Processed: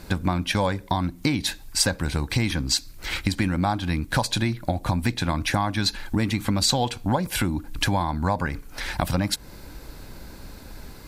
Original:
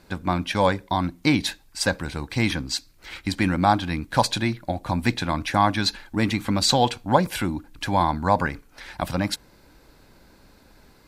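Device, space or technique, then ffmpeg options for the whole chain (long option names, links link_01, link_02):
ASMR close-microphone chain: -af "lowshelf=frequency=140:gain=8,acompressor=threshold=-29dB:ratio=6,highshelf=frequency=6500:gain=6.5,volume=8dB"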